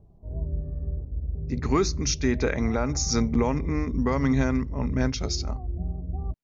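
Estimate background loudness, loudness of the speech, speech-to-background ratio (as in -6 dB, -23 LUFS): -33.0 LUFS, -26.5 LUFS, 6.5 dB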